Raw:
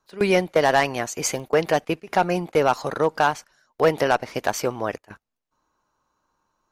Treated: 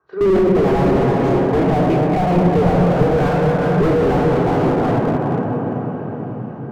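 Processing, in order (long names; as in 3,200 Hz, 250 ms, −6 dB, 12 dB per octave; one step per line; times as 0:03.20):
rippled gain that drifts along the octave scale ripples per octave 0.57, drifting −0.31 Hz, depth 8 dB
low-pass filter 1,400 Hz 12 dB per octave
feedback delay with all-pass diffusion 468 ms, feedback 59%, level −12.5 dB
convolution reverb RT60 4.4 s, pre-delay 3 ms, DRR −3.5 dB
slew-rate limiting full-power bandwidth 130 Hz
level −2.5 dB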